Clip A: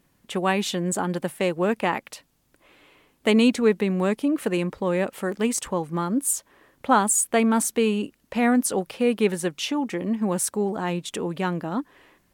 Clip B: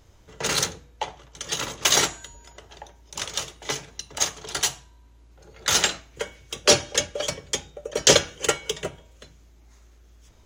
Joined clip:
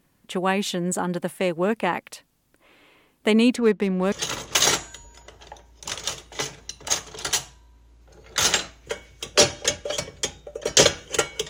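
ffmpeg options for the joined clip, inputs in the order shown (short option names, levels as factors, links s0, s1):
-filter_complex "[0:a]asettb=1/sr,asplit=3[s0][s1][s2];[s0]atrim=end=3.564[s3];[s1]atrim=start=3.56:end=4.12,asetpts=PTS-STARTPTS,afade=t=in:d=0.004:c=qsin,afade=t=out:st=0.556:d=0.004:c=qsin,adynamicsmooth=sensitivity=7:basefreq=2400[s4];[s2]atrim=start=4.116[s5];[s3][s4]acrossfade=d=0.004:c1=hsin:c2=qsin[s6];[s6][s5]acrossfade=d=0.004:c1=qsin:c2=hsin,apad=whole_dur=11.49,atrim=end=11.49,atrim=end=4.122[s7];[1:a]atrim=start=1.418:end=8.79[s8];[s7][s8]acrossfade=d=0.004:c1=hsin:c2=hsin"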